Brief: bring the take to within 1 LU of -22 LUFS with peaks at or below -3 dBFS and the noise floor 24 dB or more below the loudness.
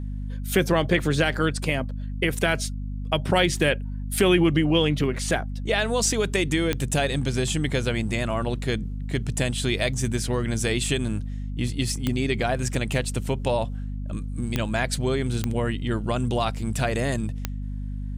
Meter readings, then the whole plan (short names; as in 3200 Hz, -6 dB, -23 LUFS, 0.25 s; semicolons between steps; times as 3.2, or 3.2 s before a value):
clicks 5; hum 50 Hz; harmonics up to 250 Hz; hum level -28 dBFS; loudness -25.0 LUFS; peak -7.5 dBFS; loudness target -22.0 LUFS
-> de-click; de-hum 50 Hz, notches 5; gain +3 dB